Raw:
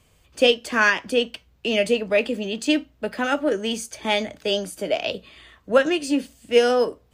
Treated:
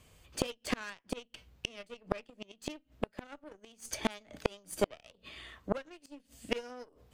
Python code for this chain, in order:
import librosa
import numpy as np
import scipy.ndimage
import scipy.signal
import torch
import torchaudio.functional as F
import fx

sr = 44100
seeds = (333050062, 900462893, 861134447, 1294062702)

y = fx.cheby_harmonics(x, sr, harmonics=(3, 6, 7, 8), levels_db=(-42, -21, -20, -42), full_scale_db=-4.5)
y = fx.gate_flip(y, sr, shuts_db=-23.0, range_db=-35)
y = F.gain(torch.from_numpy(y), 9.5).numpy()